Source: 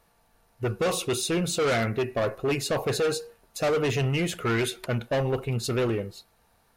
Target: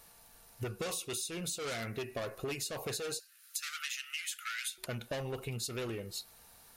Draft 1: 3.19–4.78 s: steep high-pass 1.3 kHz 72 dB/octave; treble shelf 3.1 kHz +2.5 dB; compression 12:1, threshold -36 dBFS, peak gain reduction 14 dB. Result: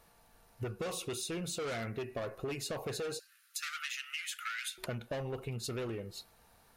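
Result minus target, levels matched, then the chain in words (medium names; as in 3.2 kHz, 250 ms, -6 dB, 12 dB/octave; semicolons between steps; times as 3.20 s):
8 kHz band -3.0 dB
3.19–4.78 s: steep high-pass 1.3 kHz 72 dB/octave; treble shelf 3.1 kHz +14 dB; compression 12:1, threshold -36 dBFS, peak gain reduction 21 dB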